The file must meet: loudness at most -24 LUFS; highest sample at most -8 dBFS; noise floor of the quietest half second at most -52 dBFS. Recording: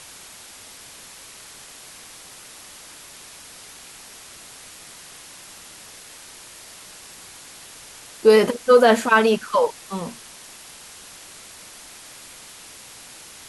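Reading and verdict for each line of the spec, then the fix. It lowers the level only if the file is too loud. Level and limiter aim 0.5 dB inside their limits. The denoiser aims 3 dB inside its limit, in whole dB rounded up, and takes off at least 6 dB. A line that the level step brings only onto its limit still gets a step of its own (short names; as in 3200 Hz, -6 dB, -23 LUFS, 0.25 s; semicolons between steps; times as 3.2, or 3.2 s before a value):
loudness -18.0 LUFS: fail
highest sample -3.5 dBFS: fail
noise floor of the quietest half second -43 dBFS: fail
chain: denoiser 6 dB, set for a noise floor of -43 dBFS; gain -6.5 dB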